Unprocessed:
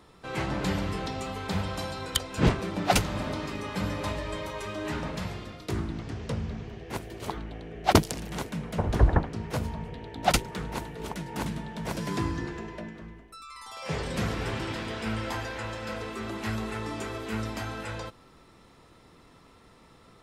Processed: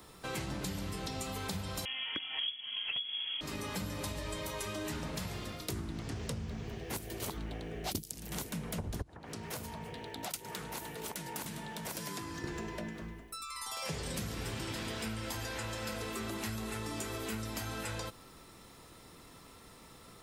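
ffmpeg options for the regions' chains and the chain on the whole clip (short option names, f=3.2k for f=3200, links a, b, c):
-filter_complex "[0:a]asettb=1/sr,asplit=3[a][b][c];[a]atrim=end=1.854[d];[b]atrim=start=1.85:end=3.41,asetpts=PTS-STARTPTS,afade=t=in:d=0.004:c=qsin,afade=t=out:st=1.556:d=0.004:c=qsin,asubboost=boost=7:cutoff=130,lowpass=f=2.9k:t=q:w=0.5098,lowpass=f=2.9k:t=q:w=0.6013,lowpass=f=2.9k:t=q:w=0.9,lowpass=f=2.9k:t=q:w=2.563,afreqshift=-3400[e];[c]atrim=start=3.406[f];[d][e]acrossfade=d=0.004:c1=hsin:c2=qsin[g];[g][f]acrossfade=d=0.004:c1=qsin:c2=hsin,asettb=1/sr,asplit=3[h][i][j];[h]atrim=end=9.024[k];[i]atrim=start=9.02:end=12.44,asetpts=PTS-STARTPTS,afade=t=in:d=0.004:c=qsin,afade=t=out:st=3.416:d=0.004:c=qsin,lowshelf=f=340:g=-7,acompressor=threshold=-38dB:ratio=4:attack=3.2:release=140:knee=1:detection=peak,highpass=75[l];[j]atrim=start=12.436[m];[k][l]acrossfade=d=0.004:c1=hsin:c2=qsin[n];[n][m]acrossfade=d=0.004:c1=qsin:c2=hsin,acrossover=split=360|3000[o][p][q];[p]acompressor=threshold=-37dB:ratio=6[r];[o][r][q]amix=inputs=3:normalize=0,aemphasis=mode=production:type=50fm,acompressor=threshold=-35dB:ratio=8"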